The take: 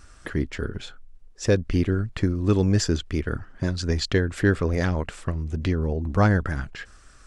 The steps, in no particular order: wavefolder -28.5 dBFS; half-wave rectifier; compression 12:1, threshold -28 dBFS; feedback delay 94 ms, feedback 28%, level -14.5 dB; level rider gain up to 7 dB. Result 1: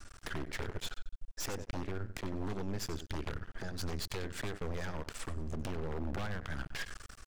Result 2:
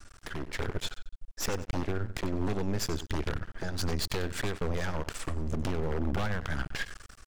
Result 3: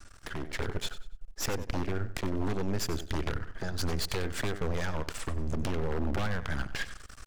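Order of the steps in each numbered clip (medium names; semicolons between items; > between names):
level rider > compression > feedback delay > half-wave rectifier > wavefolder; compression > wavefolder > level rider > feedback delay > half-wave rectifier; compression > half-wave rectifier > feedback delay > wavefolder > level rider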